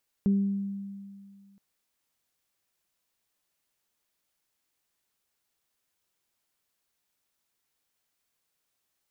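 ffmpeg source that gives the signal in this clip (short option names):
-f lavfi -i "aevalsrc='0.112*pow(10,-3*t/2.13)*sin(2*PI*198*t)+0.02*pow(10,-3*t/0.71)*sin(2*PI*396*t)':d=1.32:s=44100"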